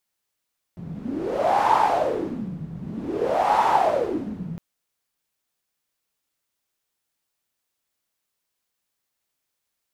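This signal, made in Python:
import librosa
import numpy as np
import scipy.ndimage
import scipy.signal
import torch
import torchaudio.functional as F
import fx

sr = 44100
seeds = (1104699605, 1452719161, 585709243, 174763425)

y = fx.wind(sr, seeds[0], length_s=3.81, low_hz=160.0, high_hz=900.0, q=6.7, gusts=2, swing_db=15)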